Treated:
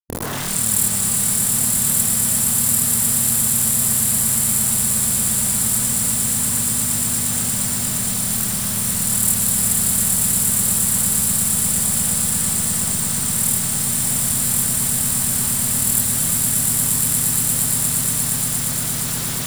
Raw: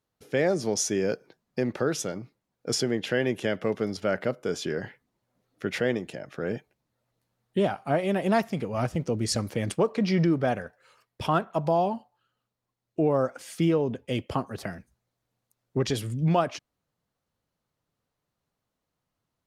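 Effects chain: spectral swells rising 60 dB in 0.77 s; AM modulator 39 Hz, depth 55%; in parallel at -9 dB: soft clip -22 dBFS, distortion -12 dB; on the sum: dynamic EQ 130 Hz, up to +4 dB, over -42 dBFS, Q 2.8; AGC gain up to 15 dB; brick-wall FIR band-stop 240–7100 Hz; swelling echo 0.117 s, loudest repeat 8, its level -6 dB; bit-crush 7-bit; fifteen-band EQ 100 Hz +8 dB, 250 Hz +5 dB, 2500 Hz -4 dB; spectral compressor 10:1; gain -2.5 dB

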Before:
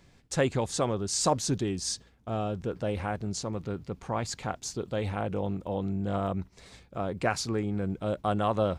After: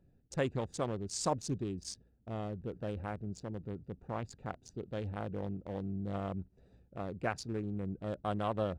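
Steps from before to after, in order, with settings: Wiener smoothing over 41 samples; gain -6.5 dB

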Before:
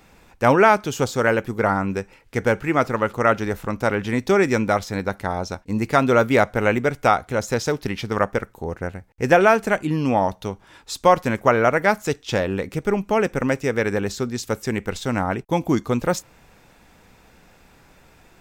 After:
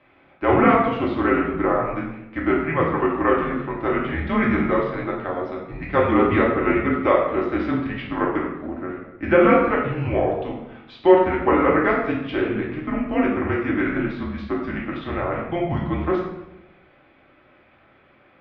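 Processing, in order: shoebox room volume 370 m³, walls mixed, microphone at 1.9 m; mistuned SSB -170 Hz 320–3400 Hz; gain -5 dB

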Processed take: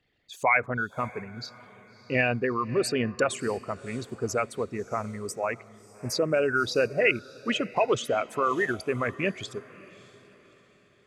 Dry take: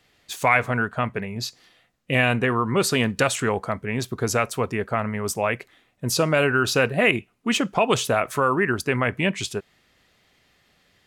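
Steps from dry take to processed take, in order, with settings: formant sharpening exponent 2; on a send: diffused feedback echo 0.616 s, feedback 41%, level -15.5 dB; on the sum: upward expander 1.5:1, over -31 dBFS; gain -3 dB

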